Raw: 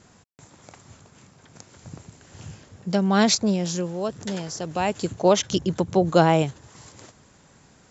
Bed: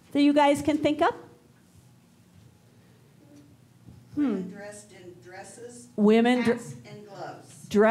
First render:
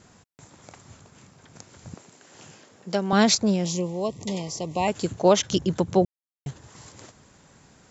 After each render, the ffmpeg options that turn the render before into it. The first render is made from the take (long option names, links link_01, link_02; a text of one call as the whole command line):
ffmpeg -i in.wav -filter_complex "[0:a]asettb=1/sr,asplit=3[link_01][link_02][link_03];[link_01]atrim=end=1.944[link_04];[link_02]atrim=start=1.94:end=3.13,asetpts=PTS-STARTPTS,afade=type=in:duration=0.004:curve=qsin,afade=type=out:start_time=1.186:duration=0.004:curve=qsin,highpass=280[link_05];[link_03]atrim=start=3.126[link_06];[link_04][link_05]acrossfade=duration=0.004:curve1=hsin:curve2=qsin[link_07];[link_07][link_06]acrossfade=duration=0.004:curve1=qsin:curve2=hsin,asettb=1/sr,asplit=3[link_08][link_09][link_10];[link_08]atrim=end=3.654[link_11];[link_09]atrim=start=3.65:end=4.88,asetpts=PTS-STARTPTS,afade=type=in:duration=0.004:curve=qsin,afade=type=out:start_time=1.226:duration=0.004:curve=qsin,asuperstop=centerf=1500:order=20:qfactor=2.2[link_12];[link_10]atrim=start=4.876[link_13];[link_11][link_12]acrossfade=duration=0.004:curve1=hsin:curve2=qsin[link_14];[link_14][link_13]acrossfade=duration=0.004:curve1=qsin:curve2=hsin,asplit=3[link_15][link_16][link_17];[link_15]atrim=end=6.05,asetpts=PTS-STARTPTS,afade=type=out:start_time=6.046:duration=0.004:curve=hsin[link_18];[link_16]atrim=start=6.05:end=6.46,asetpts=PTS-STARTPTS,volume=0[link_19];[link_17]atrim=start=6.46,asetpts=PTS-STARTPTS,afade=type=in:duration=0.004:curve=hsin[link_20];[link_18][link_19][link_20]concat=n=3:v=0:a=1" out.wav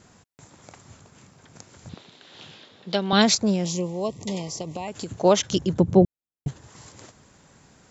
ffmpeg -i in.wav -filter_complex "[0:a]asettb=1/sr,asplit=3[link_01][link_02][link_03];[link_01]atrim=end=1.894[link_04];[link_02]atrim=start=1.89:end=3.22,asetpts=PTS-STARTPTS,afade=type=in:duration=0.004:curve=qsin,afade=type=out:start_time=1.326:duration=0.004:curve=qsin,lowpass=frequency=3700:width_type=q:width=5[link_05];[link_03]atrim=start=3.216[link_06];[link_04][link_05]acrossfade=duration=0.004:curve1=hsin:curve2=qsin[link_07];[link_07][link_06]acrossfade=duration=0.004:curve1=qsin:curve2=hsin,asettb=1/sr,asplit=3[link_08][link_09][link_10];[link_08]atrim=end=4.614[link_11];[link_09]atrim=start=4.61:end=5.16,asetpts=PTS-STARTPTS,afade=type=in:duration=0.004:curve=qsin,afade=type=out:start_time=0.546:duration=0.004:curve=qsin,acompressor=threshold=-27dB:ratio=12:attack=3.2:release=140:knee=1:detection=peak[link_12];[link_10]atrim=start=5.156[link_13];[link_11][link_12]acrossfade=duration=0.004:curve1=hsin:curve2=qsin[link_14];[link_14][link_13]acrossfade=duration=0.004:curve1=qsin:curve2=hsin,asettb=1/sr,asplit=3[link_15][link_16][link_17];[link_15]atrim=end=5.734[link_18];[link_16]atrim=start=5.73:end=6.48,asetpts=PTS-STARTPTS,afade=type=in:duration=0.004:curve=qsin,afade=type=out:start_time=0.746:duration=0.004:curve=qsin,tiltshelf=frequency=670:gain=8[link_19];[link_17]atrim=start=6.476[link_20];[link_18][link_19]acrossfade=duration=0.004:curve1=hsin:curve2=qsin[link_21];[link_21][link_20]acrossfade=duration=0.004:curve1=qsin:curve2=hsin" out.wav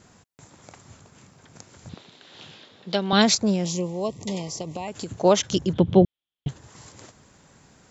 ffmpeg -i in.wav -filter_complex "[0:a]asettb=1/sr,asplit=3[link_01][link_02][link_03];[link_01]atrim=end=5.734[link_04];[link_02]atrim=start=5.73:end=6.49,asetpts=PTS-STARTPTS,afade=type=in:duration=0.004:curve=qsin,afade=type=out:start_time=0.756:duration=0.004:curve=qsin,lowpass=frequency=3300:width_type=q:width=7.3[link_05];[link_03]atrim=start=6.486[link_06];[link_04][link_05]acrossfade=duration=0.004:curve1=hsin:curve2=qsin[link_07];[link_07][link_06]acrossfade=duration=0.004:curve1=qsin:curve2=hsin" out.wav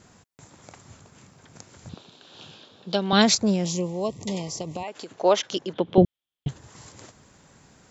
ffmpeg -i in.wav -filter_complex "[0:a]asettb=1/sr,asplit=3[link_01][link_02][link_03];[link_01]atrim=end=1.914[link_04];[link_02]atrim=start=1.91:end=3.01,asetpts=PTS-STARTPTS,afade=type=in:duration=0.004:curve=qsin,afade=type=out:start_time=1.096:duration=0.004:curve=qsin,equalizer=frequency=2000:width=4.7:gain=-12[link_05];[link_03]atrim=start=3.006[link_06];[link_04][link_05]acrossfade=duration=0.004:curve1=hsin:curve2=qsin[link_07];[link_07][link_06]acrossfade=duration=0.004:curve1=qsin:curve2=hsin,asettb=1/sr,asplit=3[link_08][link_09][link_10];[link_08]atrim=end=4.834[link_11];[link_09]atrim=start=4.83:end=5.98,asetpts=PTS-STARTPTS,afade=type=in:duration=0.004:curve=qsin,afade=type=out:start_time=1.146:duration=0.004:curve=qsin,highpass=390,lowpass=4800[link_12];[link_10]atrim=start=5.976[link_13];[link_11][link_12]acrossfade=duration=0.004:curve1=hsin:curve2=qsin[link_14];[link_14][link_13]acrossfade=duration=0.004:curve1=qsin:curve2=hsin" out.wav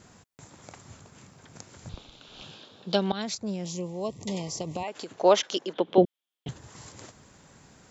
ffmpeg -i in.wav -filter_complex "[0:a]asettb=1/sr,asplit=3[link_01][link_02][link_03];[link_01]atrim=end=1.934[link_04];[link_02]atrim=start=1.93:end=2.44,asetpts=PTS-STARTPTS,afade=type=in:duration=0.004:curve=qsin,afade=type=out:start_time=0.506:duration=0.004:curve=qsin,afreqshift=-130[link_05];[link_03]atrim=start=2.436[link_06];[link_04][link_05]acrossfade=duration=0.004:curve1=hsin:curve2=qsin[link_07];[link_07][link_06]acrossfade=duration=0.004:curve1=qsin:curve2=hsin,asettb=1/sr,asplit=3[link_08][link_09][link_10];[link_08]atrim=end=5.434[link_11];[link_09]atrim=start=5.43:end=6.49,asetpts=PTS-STARTPTS,afade=type=in:duration=0.004:curve=qsin,afade=type=out:start_time=1.056:duration=0.004:curve=qsin,highpass=290[link_12];[link_10]atrim=start=6.486[link_13];[link_11][link_12]acrossfade=duration=0.004:curve1=hsin:curve2=qsin[link_14];[link_14][link_13]acrossfade=duration=0.004:curve1=qsin:curve2=hsin,asplit=2[link_15][link_16];[link_15]atrim=end=3.12,asetpts=PTS-STARTPTS,afade=type=out:start_time=3.116:duration=0.004:curve=hsin:silence=0.112202[link_17];[link_16]atrim=start=3.12,asetpts=PTS-STARTPTS,afade=type=in:duration=1.73:silence=0.112202[link_18];[link_17][link_18]concat=n=2:v=0:a=1" out.wav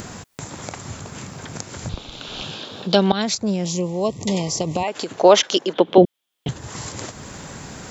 ffmpeg -i in.wav -filter_complex "[0:a]asplit=2[link_01][link_02];[link_02]acompressor=mode=upward:threshold=-31dB:ratio=2.5,volume=2.5dB[link_03];[link_01][link_03]amix=inputs=2:normalize=0,alimiter=level_in=3dB:limit=-1dB:release=50:level=0:latency=1" out.wav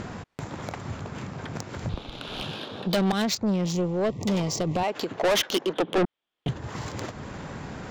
ffmpeg -i in.wav -af "adynamicsmooth=sensitivity=2:basefreq=2900,asoftclip=type=tanh:threshold=-19dB" out.wav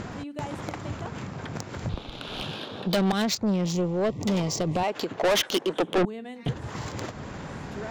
ffmpeg -i in.wav -i bed.wav -filter_complex "[1:a]volume=-18dB[link_01];[0:a][link_01]amix=inputs=2:normalize=0" out.wav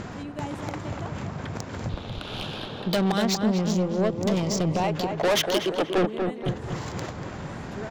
ffmpeg -i in.wav -filter_complex "[0:a]asplit=2[link_01][link_02];[link_02]adelay=239,lowpass=frequency=1800:poles=1,volume=-4.5dB,asplit=2[link_03][link_04];[link_04]adelay=239,lowpass=frequency=1800:poles=1,volume=0.51,asplit=2[link_05][link_06];[link_06]adelay=239,lowpass=frequency=1800:poles=1,volume=0.51,asplit=2[link_07][link_08];[link_08]adelay=239,lowpass=frequency=1800:poles=1,volume=0.51,asplit=2[link_09][link_10];[link_10]adelay=239,lowpass=frequency=1800:poles=1,volume=0.51,asplit=2[link_11][link_12];[link_12]adelay=239,lowpass=frequency=1800:poles=1,volume=0.51,asplit=2[link_13][link_14];[link_14]adelay=239,lowpass=frequency=1800:poles=1,volume=0.51[link_15];[link_01][link_03][link_05][link_07][link_09][link_11][link_13][link_15]amix=inputs=8:normalize=0" out.wav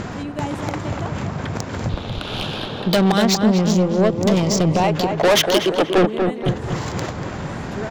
ffmpeg -i in.wav -af "volume=7.5dB" out.wav